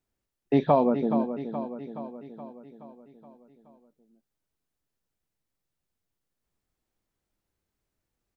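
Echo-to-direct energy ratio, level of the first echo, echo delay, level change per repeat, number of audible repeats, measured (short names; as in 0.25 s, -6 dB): -8.0 dB, -9.5 dB, 0.423 s, -5.0 dB, 6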